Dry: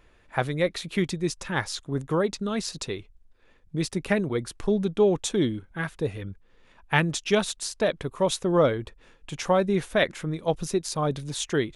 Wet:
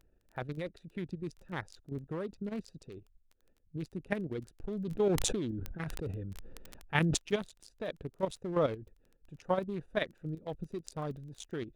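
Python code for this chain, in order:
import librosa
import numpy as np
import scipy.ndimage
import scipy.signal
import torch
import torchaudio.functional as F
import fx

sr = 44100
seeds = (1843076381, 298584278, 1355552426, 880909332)

y = fx.wiener(x, sr, points=41)
y = fx.high_shelf(y, sr, hz=9500.0, db=2.5)
y = fx.level_steps(y, sr, step_db=10)
y = fx.dmg_crackle(y, sr, seeds[0], per_s=15.0, level_db=-40.0)
y = fx.sustainer(y, sr, db_per_s=22.0, at=(4.75, 7.16), fade=0.02)
y = F.gain(torch.from_numpy(y), -6.0).numpy()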